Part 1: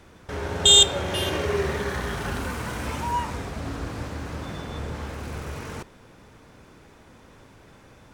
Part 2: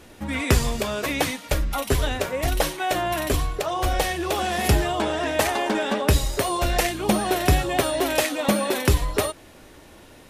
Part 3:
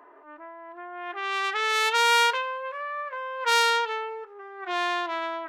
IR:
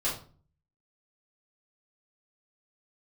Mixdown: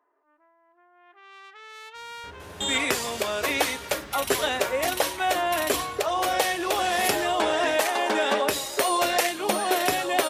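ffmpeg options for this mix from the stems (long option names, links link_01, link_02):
-filter_complex "[0:a]adelay=1950,volume=-15dB[link_01];[1:a]highpass=400,adelay=2400,volume=3dB[link_02];[2:a]volume=-19.5dB[link_03];[link_01][link_02][link_03]amix=inputs=3:normalize=0,alimiter=limit=-9.5dB:level=0:latency=1:release=488"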